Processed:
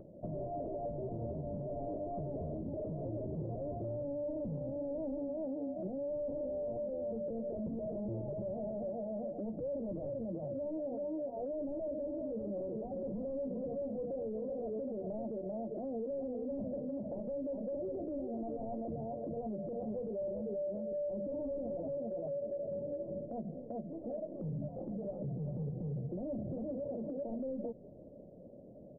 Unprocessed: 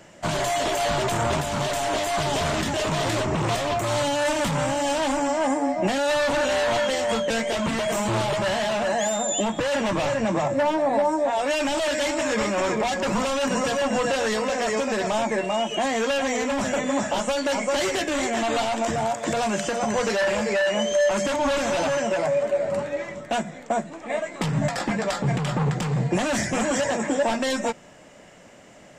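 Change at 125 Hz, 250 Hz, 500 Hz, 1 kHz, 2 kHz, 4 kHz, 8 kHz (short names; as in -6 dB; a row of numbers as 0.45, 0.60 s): -13.0 dB, -12.5 dB, -14.0 dB, -25.0 dB, under -40 dB, under -40 dB, under -40 dB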